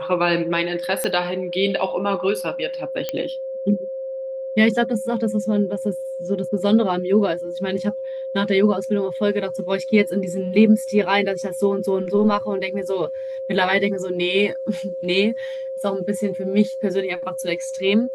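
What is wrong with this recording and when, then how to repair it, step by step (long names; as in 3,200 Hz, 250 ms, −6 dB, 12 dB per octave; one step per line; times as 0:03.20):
whistle 530 Hz −26 dBFS
0:01.04: click −10 dBFS
0:03.09: click −10 dBFS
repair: click removal
notch filter 530 Hz, Q 30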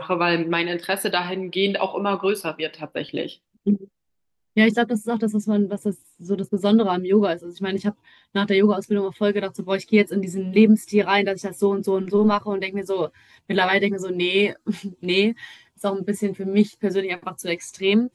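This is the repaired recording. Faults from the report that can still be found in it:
none of them is left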